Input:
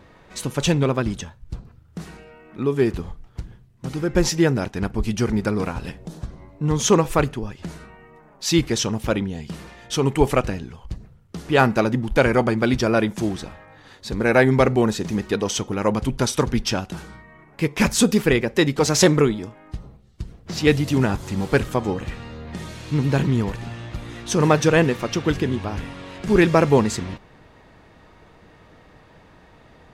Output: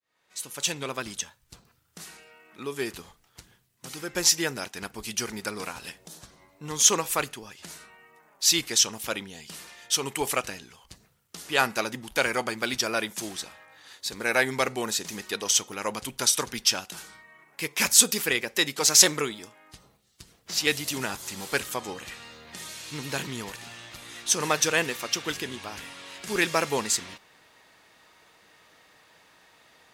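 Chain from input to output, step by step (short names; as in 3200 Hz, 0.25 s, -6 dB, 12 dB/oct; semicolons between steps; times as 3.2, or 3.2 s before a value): opening faded in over 1.05 s; tilt +4.5 dB/oct; gain -6.5 dB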